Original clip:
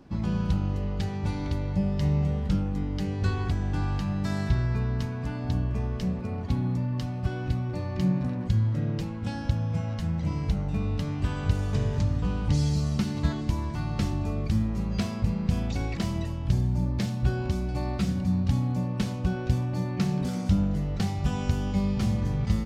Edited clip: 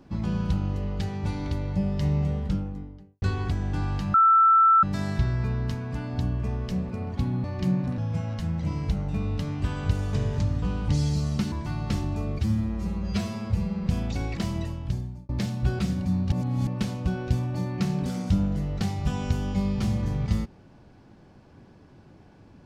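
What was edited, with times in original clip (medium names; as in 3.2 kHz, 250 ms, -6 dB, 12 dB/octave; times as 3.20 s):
2.28–3.22 s: studio fade out
4.14 s: add tone 1.33 kHz -14 dBFS 0.69 s
6.75–7.81 s: delete
8.35–9.58 s: delete
13.12–13.61 s: delete
14.48–15.46 s: stretch 1.5×
16.27–16.89 s: fade out
17.39–17.98 s: delete
18.51–18.86 s: reverse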